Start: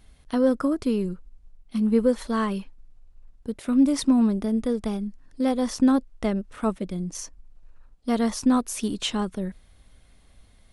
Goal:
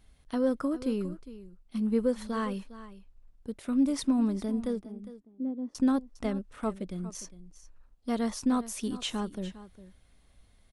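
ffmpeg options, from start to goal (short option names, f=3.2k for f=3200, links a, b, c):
-filter_complex "[0:a]asettb=1/sr,asplit=3[a][b][c];[a]atrim=end=4.814[d];[b]atrim=start=4.81:end=5.75,asetpts=PTS-STARTPTS,afade=t=in:d=0.004:c=qsin,afade=t=out:st=0.936:d=0.004:c=qsin,bandpass=f=290:t=q:w=3.4:csg=0[e];[c]atrim=start=5.746[f];[d][e]acrossfade=d=0.004:c1=hsin:c2=qsin[g];[g][f]acrossfade=d=0.004:c1=qsin:c2=hsin,aecho=1:1:406:0.168,volume=-6.5dB"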